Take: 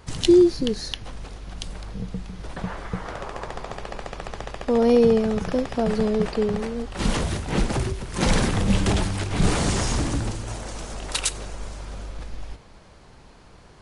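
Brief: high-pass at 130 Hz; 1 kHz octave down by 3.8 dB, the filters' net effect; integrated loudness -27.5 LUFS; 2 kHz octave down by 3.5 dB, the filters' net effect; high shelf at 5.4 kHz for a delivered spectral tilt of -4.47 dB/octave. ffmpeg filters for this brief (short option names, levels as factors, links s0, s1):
-af "highpass=130,equalizer=f=1000:t=o:g=-4.5,equalizer=f=2000:t=o:g=-4,highshelf=f=5400:g=5.5,volume=0.668"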